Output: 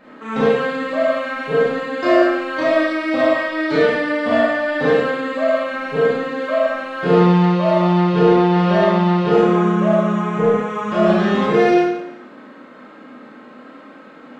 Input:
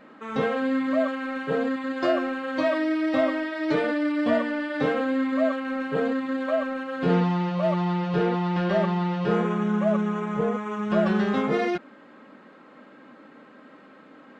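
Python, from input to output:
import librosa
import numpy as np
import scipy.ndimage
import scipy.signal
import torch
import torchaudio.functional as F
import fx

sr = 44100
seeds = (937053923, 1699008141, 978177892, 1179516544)

y = fx.rev_schroeder(x, sr, rt60_s=0.83, comb_ms=25, drr_db=-6.5)
y = y * librosa.db_to_amplitude(1.5)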